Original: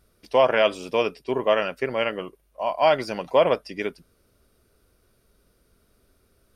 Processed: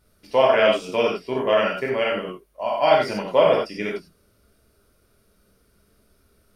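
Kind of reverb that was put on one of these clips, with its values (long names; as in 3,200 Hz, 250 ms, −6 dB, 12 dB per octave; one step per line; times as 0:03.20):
reverb whose tail is shaped and stops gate 120 ms flat, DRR −2.5 dB
level −2 dB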